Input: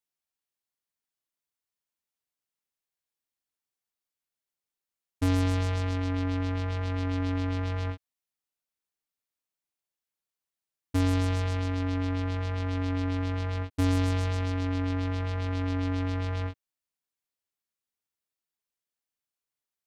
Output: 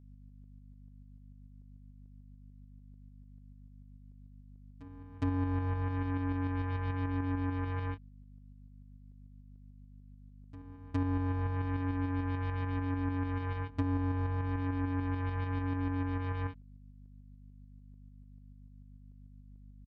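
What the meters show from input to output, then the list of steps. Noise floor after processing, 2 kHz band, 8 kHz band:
-55 dBFS, -5.0 dB, under -25 dB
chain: low-pass 2.8 kHz 6 dB/octave; low-pass that closes with the level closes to 1.3 kHz, closed at -25 dBFS; peaking EQ 350 Hz -7 dB 1.1 oct; comb 6.9 ms, depth 78%; compression 3:1, threshold -27 dBFS, peak gain reduction 4.5 dB; hum 50 Hz, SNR 16 dB; tremolo saw up 6.8 Hz, depth 40%; reverse echo 412 ms -18.5 dB

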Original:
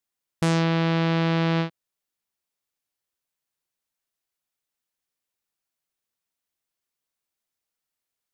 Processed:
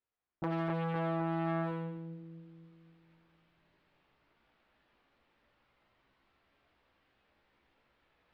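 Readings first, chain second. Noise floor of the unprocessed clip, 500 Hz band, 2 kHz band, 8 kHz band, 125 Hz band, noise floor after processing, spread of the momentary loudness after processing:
under -85 dBFS, -9.0 dB, -14.0 dB, no reading, -13.0 dB, -79 dBFS, 15 LU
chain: reverse; upward compressor, threshold -44 dBFS; reverse; sample-and-hold 4×; chorus voices 4, 0.28 Hz, delay 16 ms, depth 2.1 ms; distance through air 420 m; on a send: two-band feedback delay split 340 Hz, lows 259 ms, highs 81 ms, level -5 dB; on the sum: transformer saturation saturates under 1 kHz; trim -3.5 dB

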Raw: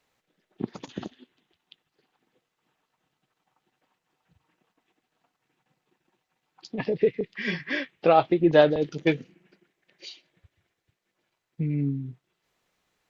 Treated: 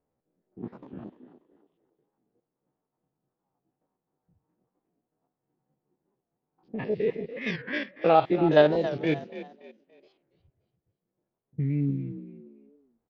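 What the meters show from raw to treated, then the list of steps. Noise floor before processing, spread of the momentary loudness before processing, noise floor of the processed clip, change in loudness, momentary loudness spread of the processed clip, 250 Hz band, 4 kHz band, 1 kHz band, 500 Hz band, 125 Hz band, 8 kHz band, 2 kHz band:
-82 dBFS, 21 LU, under -85 dBFS, -1.0 dB, 22 LU, -1.5 dB, -3.0 dB, -0.5 dB, -1.0 dB, 0.0 dB, no reading, -2.5 dB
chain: spectrogram pixelated in time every 50 ms; level-controlled noise filter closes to 570 Hz, open at -22.5 dBFS; frequency-shifting echo 286 ms, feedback 32%, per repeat +42 Hz, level -13.5 dB; warped record 45 rpm, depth 160 cents

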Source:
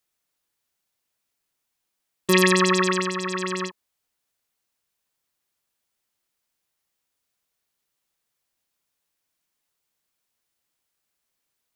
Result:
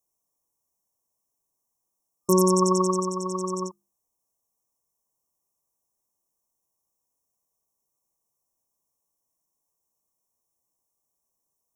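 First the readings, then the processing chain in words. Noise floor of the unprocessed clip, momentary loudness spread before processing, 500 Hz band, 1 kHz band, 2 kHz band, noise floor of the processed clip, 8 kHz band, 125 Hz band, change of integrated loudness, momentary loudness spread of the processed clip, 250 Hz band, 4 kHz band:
-80 dBFS, 14 LU, 0.0 dB, -1.0 dB, under -40 dB, -81 dBFS, 0.0 dB, 0.0 dB, -2.0 dB, 14 LU, 0.0 dB, -11.5 dB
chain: hum notches 50/100/150/200/250/300/350 Hz; FFT band-reject 1.2–5.3 kHz

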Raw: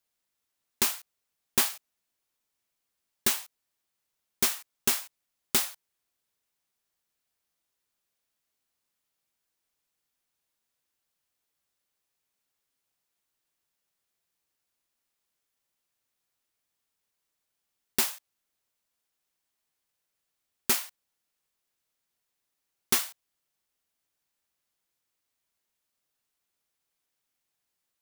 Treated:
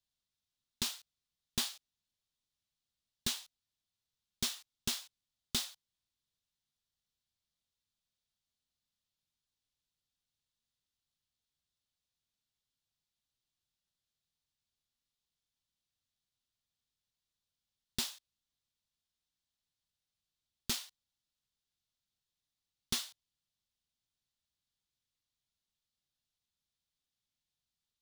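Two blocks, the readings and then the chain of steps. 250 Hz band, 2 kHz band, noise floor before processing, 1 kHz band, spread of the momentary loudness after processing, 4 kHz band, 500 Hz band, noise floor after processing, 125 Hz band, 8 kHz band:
-6.5 dB, -11.5 dB, -83 dBFS, -13.0 dB, 12 LU, -4.0 dB, -14.0 dB, under -85 dBFS, -1.0 dB, -10.0 dB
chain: FFT filter 110 Hz 0 dB, 220 Hz -6 dB, 370 Hz -15 dB, 2.3 kHz -14 dB, 3.6 kHz -3 dB, 15 kHz -19 dB; in parallel at -3 dB: peak limiter -23.5 dBFS, peak gain reduction 6 dB; on the sum: trim -2.5 dB

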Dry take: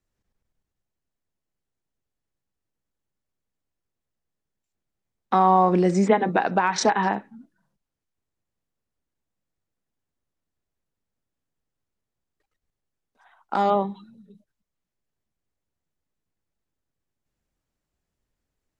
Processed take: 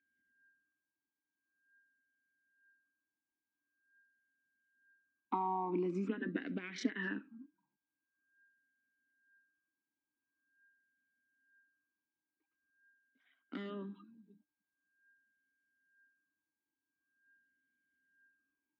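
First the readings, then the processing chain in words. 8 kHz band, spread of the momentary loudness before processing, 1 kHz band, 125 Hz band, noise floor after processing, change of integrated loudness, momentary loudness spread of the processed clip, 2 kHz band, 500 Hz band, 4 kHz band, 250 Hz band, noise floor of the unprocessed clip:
-24.0 dB, 9 LU, -21.0 dB, -18.5 dB, under -85 dBFS, -18.0 dB, 14 LU, -14.5 dB, -19.5 dB, -17.5 dB, -14.0 dB, -84 dBFS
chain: compression, threshold -20 dBFS, peak gain reduction 8 dB; whistle 1.6 kHz -63 dBFS; talking filter i-u 0.45 Hz; trim +2 dB

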